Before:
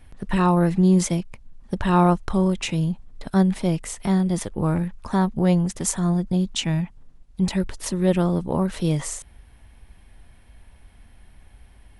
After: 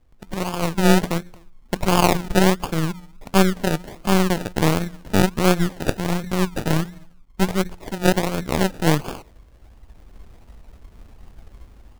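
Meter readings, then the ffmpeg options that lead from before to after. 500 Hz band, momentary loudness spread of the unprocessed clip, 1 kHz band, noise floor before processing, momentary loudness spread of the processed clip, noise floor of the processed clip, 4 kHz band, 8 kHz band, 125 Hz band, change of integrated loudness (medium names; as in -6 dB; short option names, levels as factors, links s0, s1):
+3.5 dB, 9 LU, +3.0 dB, -51 dBFS, 10 LU, -49 dBFS, +5.5 dB, 0.0 dB, -1.0 dB, +1.0 dB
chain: -filter_complex "[0:a]bandreject=f=88.96:t=h:w=4,bandreject=f=177.92:t=h:w=4,bandreject=f=266.88:t=h:w=4,bandreject=f=355.84:t=h:w=4,bandreject=f=444.8:t=h:w=4,bandreject=f=533.76:t=h:w=4,bandreject=f=622.72:t=h:w=4,bandreject=f=711.68:t=h:w=4,bandreject=f=800.64:t=h:w=4,bandreject=f=889.6:t=h:w=4,bandreject=f=978.56:t=h:w=4,bandreject=f=1067.52:t=h:w=4,bandreject=f=1156.48:t=h:w=4,bandreject=f=1245.44:t=h:w=4,bandreject=f=1334.4:t=h:w=4,bandreject=f=1423.36:t=h:w=4,bandreject=f=1512.32:t=h:w=4,bandreject=f=1601.28:t=h:w=4,bandreject=f=1690.24:t=h:w=4,bandreject=f=1779.2:t=h:w=4,bandreject=f=1868.16:t=h:w=4,bandreject=f=1957.12:t=h:w=4,asplit=2[s0][s1];[s1]adelay=250,highpass=300,lowpass=3400,asoftclip=type=hard:threshold=0.158,volume=0.126[s2];[s0][s2]amix=inputs=2:normalize=0,dynaudnorm=f=290:g=5:m=5.96,acrusher=samples=32:mix=1:aa=0.000001:lfo=1:lforange=19.2:lforate=1.4,aeval=exprs='0.944*(cos(1*acos(clip(val(0)/0.944,-1,1)))-cos(1*PI/2))+0.188*(cos(3*acos(clip(val(0)/0.944,-1,1)))-cos(3*PI/2))+0.168*(cos(4*acos(clip(val(0)/0.944,-1,1)))-cos(4*PI/2))':c=same,volume=0.75"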